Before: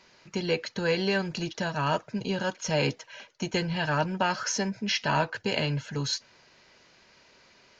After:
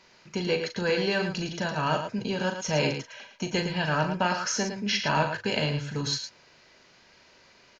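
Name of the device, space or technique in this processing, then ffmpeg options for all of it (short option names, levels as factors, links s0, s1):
slapback doubling: -filter_complex "[0:a]asplit=3[s0][s1][s2];[s1]adelay=39,volume=0.398[s3];[s2]adelay=110,volume=0.398[s4];[s0][s3][s4]amix=inputs=3:normalize=0"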